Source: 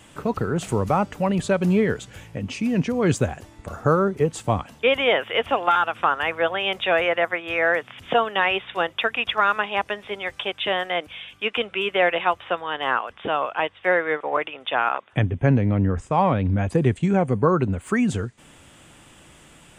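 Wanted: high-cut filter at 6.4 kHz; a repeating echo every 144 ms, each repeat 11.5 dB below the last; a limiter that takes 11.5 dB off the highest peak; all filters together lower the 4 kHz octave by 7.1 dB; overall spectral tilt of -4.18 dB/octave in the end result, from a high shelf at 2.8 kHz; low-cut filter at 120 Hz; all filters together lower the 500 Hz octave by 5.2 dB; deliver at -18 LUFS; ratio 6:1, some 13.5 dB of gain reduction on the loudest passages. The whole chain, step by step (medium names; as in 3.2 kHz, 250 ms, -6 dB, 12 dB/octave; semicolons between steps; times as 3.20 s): high-pass 120 Hz; low-pass 6.4 kHz; peaking EQ 500 Hz -6 dB; treble shelf 2.8 kHz -5.5 dB; peaking EQ 4 kHz -6 dB; compression 6:1, threshold -32 dBFS; peak limiter -29.5 dBFS; feedback delay 144 ms, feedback 27%, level -11.5 dB; trim +21.5 dB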